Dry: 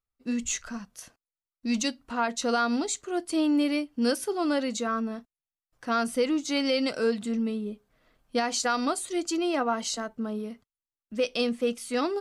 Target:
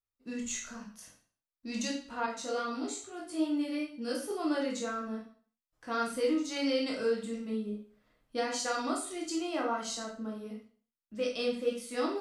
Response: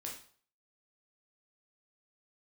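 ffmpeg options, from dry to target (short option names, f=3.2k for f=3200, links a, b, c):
-filter_complex "[1:a]atrim=start_sample=2205,afade=t=out:st=0.43:d=0.01,atrim=end_sample=19404[a];[0:a][a]afir=irnorm=-1:irlink=0,asettb=1/sr,asplit=3[b][c][d];[b]atrim=end=2.264[e];[c]atrim=start=2.26:end=4.31,asetpts=PTS-STARTPTS,afade=t=in:d=0.004:c=qsin,afade=t=out:st=2.046:d=0.004:c=qsin,flanger=delay=17.5:depth=2.6:speed=2.3[f];[d]atrim=start=4.306[g];[e][f]acrossfade=d=0.004:c1=hsin:c2=qsin[h];[h][g]acrossfade=d=0.004:c1=qsin:c2=hsin,volume=-3.5dB"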